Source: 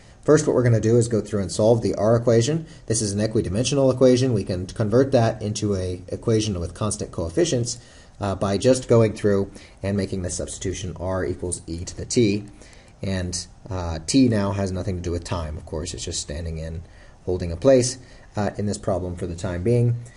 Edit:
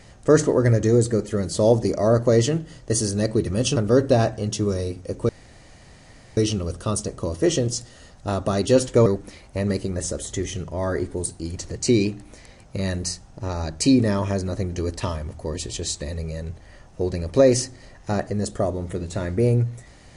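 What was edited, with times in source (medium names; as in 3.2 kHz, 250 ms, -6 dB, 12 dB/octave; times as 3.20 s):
3.76–4.79 s: delete
6.32 s: insert room tone 1.08 s
9.01–9.34 s: delete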